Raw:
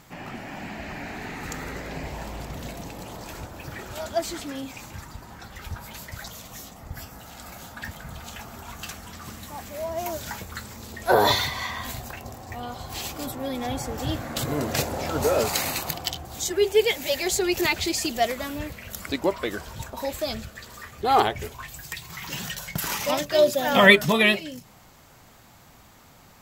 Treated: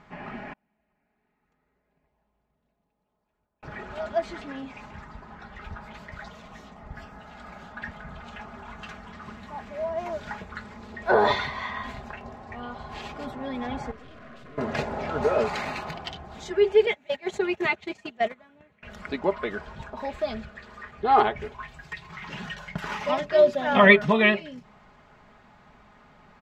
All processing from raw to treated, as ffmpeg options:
-filter_complex "[0:a]asettb=1/sr,asplit=3[s0][s1][s2];[s0]atrim=end=0.534[s3];[s1]atrim=start=0.53:end=3.63,asetpts=PTS-STARTPTS,afade=t=in:d=0.004:c=qsin,afade=t=out:st=3.096:d=0.004:c=qsin,agate=range=0.0126:threshold=0.0398:ratio=16:release=100:detection=peak,equalizer=f=1800:w=1.3:g=-3.5[s4];[s2]atrim=start=3.626[s5];[s3][s4]acrossfade=d=0.004:c1=hsin:c2=qsin[s6];[s6][s5]acrossfade=d=0.004:c1=qsin:c2=hsin,asettb=1/sr,asplit=3[s7][s8][s9];[s7]atrim=end=13.914[s10];[s8]atrim=start=13.91:end=14.58,asetpts=PTS-STARTPTS,afade=t=in:d=0.004:c=qsin,afade=t=out:st=0.666:d=0.004:c=qsin,aeval=exprs='(tanh(141*val(0)+0.45)-tanh(0.45))/141':c=same,asuperstop=centerf=860:order=8:qfactor=4.8[s11];[s9]atrim=start=14.576[s12];[s10][s11]acrossfade=d=0.004:c1=hsin:c2=qsin[s13];[s13][s12]acrossfade=d=0.004:c1=qsin:c2=hsin,asettb=1/sr,asplit=3[s14][s15][s16];[s14]atrim=end=16.864[s17];[s15]atrim=start=16.86:end=18.83,asetpts=PTS-STARTPTS,afade=t=in:d=0.004:c=qsin,afade=t=out:st=1.966:d=0.004:c=qsin,equalizer=f=4900:t=o:w=0.22:g=-10,agate=range=0.0891:threshold=0.0447:ratio=16:release=100:detection=peak,highpass=f=84:w=0.5412,highpass=f=84:w=1.3066[s18];[s16]atrim=start=18.826[s19];[s17][s18]acrossfade=d=0.004:c1=hsin:c2=qsin[s20];[s20][s19]acrossfade=d=0.004:c1=qsin:c2=hsin,lowpass=1700,tiltshelf=f=1300:g=-4,aecho=1:1:4.8:0.5,volume=1.12"

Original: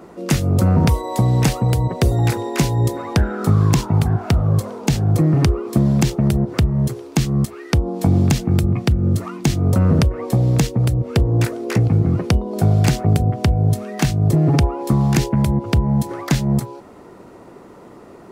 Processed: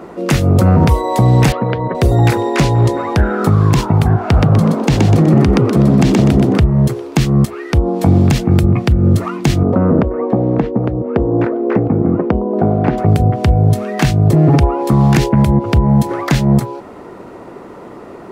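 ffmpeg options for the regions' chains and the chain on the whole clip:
-filter_complex "[0:a]asettb=1/sr,asplit=3[s0][s1][s2];[s0]atrim=end=1.524[s3];[s1]atrim=start=1.52:end=1.95,asetpts=PTS-STARTPTS,afade=t=in:d=0.004:c=qsin,afade=t=out:st=0.426:d=0.004:c=qsin,highpass=200,equalizer=f=340:t=q:w=4:g=-4,equalizer=f=1600:t=q:w=4:g=5,equalizer=f=2700:t=q:w=4:g=-4,lowpass=f=3200:w=0.5412,lowpass=f=3200:w=1.3066,bandreject=f=780:w=5.3[s4];[s2]atrim=start=1.946[s5];[s3][s4]acrossfade=d=0.004:c1=hsin:c2=qsin[s6];[s6][s5]acrossfade=d=0.004:c1=qsin:c2=hsin,asettb=1/sr,asplit=3[s7][s8][s9];[s7]atrim=end=2.544[s10];[s8]atrim=start=2.54:end=2.98,asetpts=PTS-STARTPTS,afade=t=in:d=0.004:c=qsin,afade=t=out:st=0.436:d=0.004:c=qsin,lowpass=8900,asoftclip=type=hard:threshold=0.211[s11];[s9]atrim=start=2.976[s12];[s10][s11]acrossfade=d=0.004:c1=hsin:c2=qsin[s13];[s13][s12]acrossfade=d=0.004:c1=qsin:c2=hsin,asettb=1/sr,asplit=3[s14][s15][s16];[s14]atrim=end=4.194[s17];[s15]atrim=start=4.19:end=6.61,asetpts=PTS-STARTPTS,afade=t=in:d=0.004:c=qsin,afade=t=out:st=2.416:d=0.004:c=qsin,highshelf=f=11000:g=-9.5,asplit=6[s18][s19][s20][s21][s22][s23];[s19]adelay=124,afreqshift=58,volume=0.596[s24];[s20]adelay=248,afreqshift=116,volume=0.245[s25];[s21]adelay=372,afreqshift=174,volume=0.1[s26];[s22]adelay=496,afreqshift=232,volume=0.0412[s27];[s23]adelay=620,afreqshift=290,volume=0.0168[s28];[s18][s24][s25][s26][s27][s28]amix=inputs=6:normalize=0,atrim=end_sample=106722[s29];[s16]atrim=start=6.606[s30];[s17][s29]acrossfade=d=0.004:c1=hsin:c2=qsin[s31];[s31][s30]acrossfade=d=0.004:c1=qsin:c2=hsin,asettb=1/sr,asplit=3[s32][s33][s34];[s32]atrim=end=9.634[s35];[s33]atrim=start=9.63:end=12.98,asetpts=PTS-STARTPTS,afade=t=in:d=0.004:c=qsin,afade=t=out:st=3.346:d=0.004:c=qsin,lowpass=1200,lowshelf=f=170:t=q:w=1.5:g=-8[s36];[s34]atrim=start=12.976[s37];[s35][s36]acrossfade=d=0.004:c1=hsin:c2=qsin[s38];[s38][s37]acrossfade=d=0.004:c1=qsin:c2=hsin,bass=f=250:g=-3,treble=f=4000:g=-7,alimiter=level_in=3.16:limit=0.891:release=50:level=0:latency=1,volume=0.891"

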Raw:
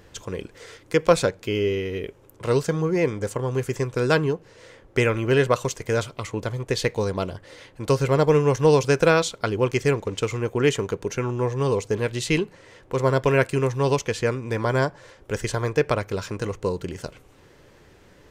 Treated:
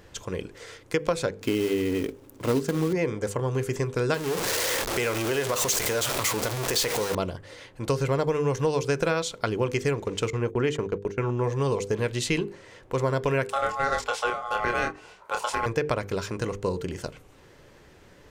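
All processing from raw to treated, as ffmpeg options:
-filter_complex "[0:a]asettb=1/sr,asplit=3[s0][s1][s2];[s0]atrim=end=1.414[s3];[s1]atrim=start=1.41:end=2.93,asetpts=PTS-STARTPTS,afade=t=in:d=0.004:c=qsin,afade=t=out:st=1.516:d=0.004:c=qsin,acrusher=bits=3:mode=log:mix=0:aa=0.000001,equalizer=f=270:w=2.9:g=13.5[s4];[s2]atrim=start=2.926[s5];[s3][s4]acrossfade=d=0.004:c1=hsin:c2=qsin[s6];[s6][s5]acrossfade=d=0.004:c1=qsin:c2=hsin,asettb=1/sr,asplit=3[s7][s8][s9];[s7]atrim=end=4.144[s10];[s8]atrim=start=4.14:end=7.15,asetpts=PTS-STARTPTS,afade=t=in:d=0.004:c=qsin,afade=t=out:st=3.006:d=0.004:c=qsin,aeval=exprs='val(0)+0.5*0.0891*sgn(val(0))':c=same,acompressor=threshold=0.0891:ratio=3:attack=3.2:release=140:knee=1:detection=peak,bass=f=250:g=-9,treble=f=4000:g=5[s11];[s9]atrim=start=7.146[s12];[s10][s11]acrossfade=d=0.004:c1=hsin:c2=qsin[s13];[s13][s12]acrossfade=d=0.004:c1=qsin:c2=hsin,asettb=1/sr,asplit=3[s14][s15][s16];[s14]atrim=end=10.304[s17];[s15]atrim=start=10.3:end=11.44,asetpts=PTS-STARTPTS,afade=t=in:d=0.004:c=qsin,afade=t=out:st=1.136:d=0.004:c=qsin,aemphasis=mode=reproduction:type=cd,agate=range=0.126:threshold=0.0224:ratio=16:release=100:detection=peak[s18];[s16]atrim=start=11.436[s19];[s17][s18]acrossfade=d=0.004:c1=hsin:c2=qsin[s20];[s20][s19]acrossfade=d=0.004:c1=qsin:c2=hsin,asettb=1/sr,asplit=3[s21][s22][s23];[s21]atrim=end=13.504[s24];[s22]atrim=start=13.5:end=15.66,asetpts=PTS-STARTPTS,afade=t=in:d=0.004:c=qsin,afade=t=out:st=2.156:d=0.004:c=qsin,aeval=exprs='val(0)*sin(2*PI*960*n/s)':c=same,asplit=2[s25][s26];[s26]adelay=27,volume=0.562[s27];[s25][s27]amix=inputs=2:normalize=0,atrim=end_sample=95256[s28];[s23]atrim=start=15.656[s29];[s24][s28]acrossfade=d=0.004:c1=hsin:c2=qsin[s30];[s30][s29]acrossfade=d=0.004:c1=qsin:c2=hsin,bandreject=f=50:t=h:w=6,bandreject=f=100:t=h:w=6,bandreject=f=150:t=h:w=6,bandreject=f=200:t=h:w=6,bandreject=f=250:t=h:w=6,bandreject=f=300:t=h:w=6,bandreject=f=350:t=h:w=6,bandreject=f=400:t=h:w=6,bandreject=f=450:t=h:w=6,bandreject=f=500:t=h:w=6,acompressor=threshold=0.0891:ratio=6"

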